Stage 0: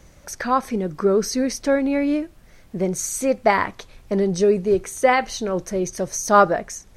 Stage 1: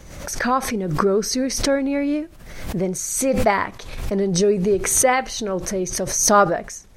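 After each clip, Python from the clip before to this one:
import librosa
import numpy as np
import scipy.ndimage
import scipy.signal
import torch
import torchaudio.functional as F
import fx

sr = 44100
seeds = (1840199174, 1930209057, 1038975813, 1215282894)

y = fx.pre_swell(x, sr, db_per_s=51.0)
y = y * 10.0 ** (-1.0 / 20.0)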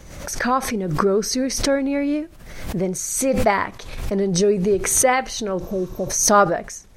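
y = fx.spec_repair(x, sr, seeds[0], start_s=5.65, length_s=0.43, low_hz=920.0, high_hz=12000.0, source='before')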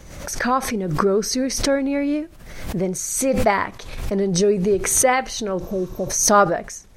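y = x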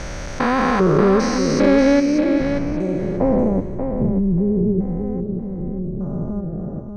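y = fx.spec_steps(x, sr, hold_ms=400)
y = fx.filter_sweep_lowpass(y, sr, from_hz=3500.0, to_hz=200.0, start_s=1.95, end_s=3.98, q=0.87)
y = fx.echo_feedback(y, sr, ms=585, feedback_pct=21, wet_db=-7.0)
y = y * 10.0 ** (8.5 / 20.0)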